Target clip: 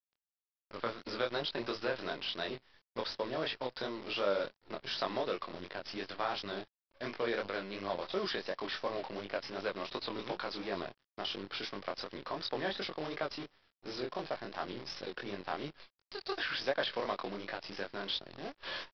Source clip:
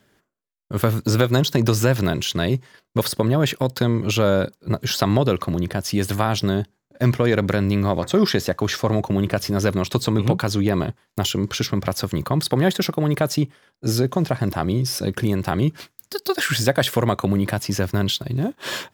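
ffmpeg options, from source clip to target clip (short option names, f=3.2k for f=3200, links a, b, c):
-af "highpass=460,aresample=11025,acrusher=bits=6:dc=4:mix=0:aa=0.000001,aresample=44100,flanger=delay=20:depth=5.6:speed=2.8,volume=-9dB"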